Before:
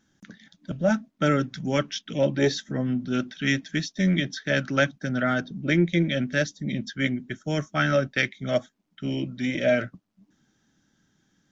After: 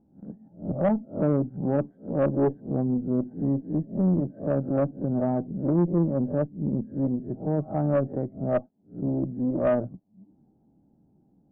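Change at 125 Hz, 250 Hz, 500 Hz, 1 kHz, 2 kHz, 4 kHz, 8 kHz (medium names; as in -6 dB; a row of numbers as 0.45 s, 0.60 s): +0.5 dB, +1.0 dB, 0.0 dB, -3.0 dB, -20.5 dB, under -30 dB, no reading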